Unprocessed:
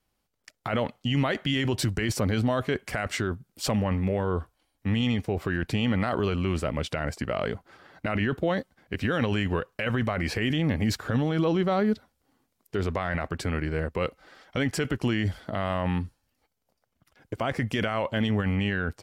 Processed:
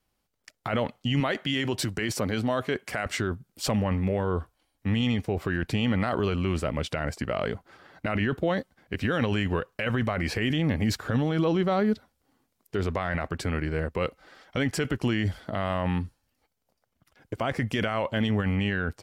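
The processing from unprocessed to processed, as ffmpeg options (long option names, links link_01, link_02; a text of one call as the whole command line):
ffmpeg -i in.wav -filter_complex "[0:a]asettb=1/sr,asplit=3[link_01][link_02][link_03];[link_01]atrim=end=1.204[link_04];[link_02]atrim=start=1.2:end=3.06,asetpts=PTS-STARTPTS,afade=type=in:duration=0.004:curve=qsin,afade=type=out:start_time=1.856:duration=0.004:curve=qsin,highpass=frequency=180:poles=1[link_05];[link_03]atrim=start=3.056[link_06];[link_04][link_05]acrossfade=duration=0.004:curve1=hsin:curve2=qsin[link_07];[link_07][link_06]acrossfade=duration=0.004:curve1=qsin:curve2=hsin" out.wav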